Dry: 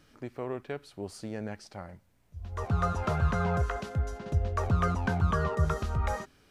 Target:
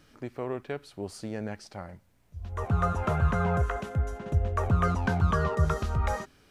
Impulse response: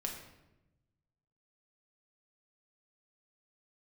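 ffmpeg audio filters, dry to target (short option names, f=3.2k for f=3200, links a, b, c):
-filter_complex "[0:a]asettb=1/sr,asplit=3[a][b][c];[a]atrim=end=2.494[d];[b]atrim=start=2.49:end=4.85,asetpts=PTS-STARTPTS,afade=t=in:d=0.004:c=qsin,afade=t=out:st=2.356:d=0.004:c=qsin,equalizer=f=4.7k:t=o:w=0.77:g=-8.5[e];[c]atrim=start=4.846[f];[d][e]acrossfade=d=0.004:c1=hsin:c2=qsin[g];[g][f]acrossfade=d=0.004:c1=qsin:c2=hsin,volume=2dB"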